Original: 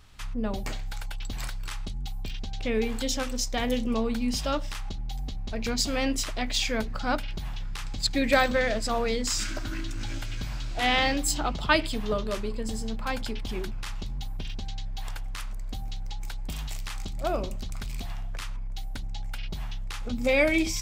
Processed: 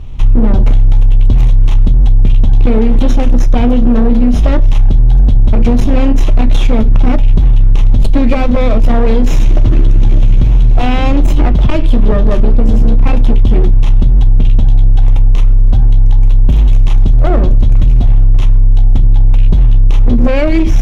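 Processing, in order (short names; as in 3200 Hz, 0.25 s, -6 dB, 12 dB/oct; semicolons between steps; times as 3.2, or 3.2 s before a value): minimum comb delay 0.31 ms; compressor 6:1, threshold -28 dBFS, peak gain reduction 10.5 dB; tilt -3 dB/oct; hard clip -18.5 dBFS, distortion -17 dB; high shelf 4500 Hz -10 dB; resonator 120 Hz, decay 0.17 s, mix 50%; maximiser +22.5 dB; gain -1 dB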